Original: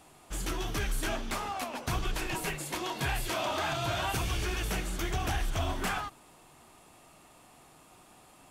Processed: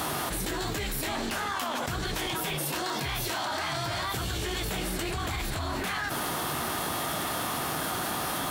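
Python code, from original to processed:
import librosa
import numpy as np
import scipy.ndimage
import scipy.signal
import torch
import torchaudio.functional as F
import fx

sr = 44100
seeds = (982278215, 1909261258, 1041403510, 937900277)

y = scipy.signal.sosfilt(scipy.signal.butter(2, 66.0, 'highpass', fs=sr, output='sos'), x)
y = fx.formant_shift(y, sr, semitones=4)
y = fx.env_flatten(y, sr, amount_pct=100)
y = y * 10.0 ** (-2.0 / 20.0)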